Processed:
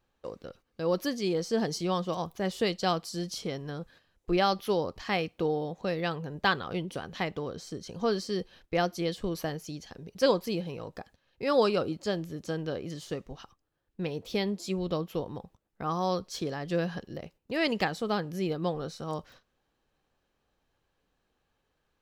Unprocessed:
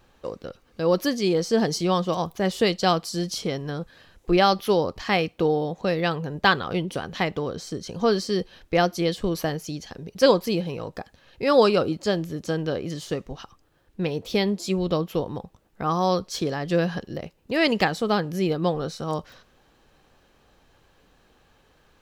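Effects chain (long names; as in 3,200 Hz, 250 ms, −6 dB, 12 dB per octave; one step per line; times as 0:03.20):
noise gate −47 dBFS, range −10 dB
level −7 dB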